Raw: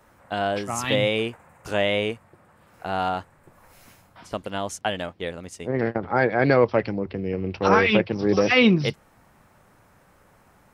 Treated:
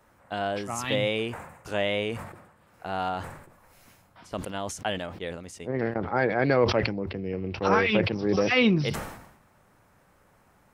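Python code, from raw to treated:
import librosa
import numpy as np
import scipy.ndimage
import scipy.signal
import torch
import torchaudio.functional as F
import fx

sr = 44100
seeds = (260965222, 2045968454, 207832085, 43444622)

y = fx.sustainer(x, sr, db_per_s=68.0)
y = y * librosa.db_to_amplitude(-4.5)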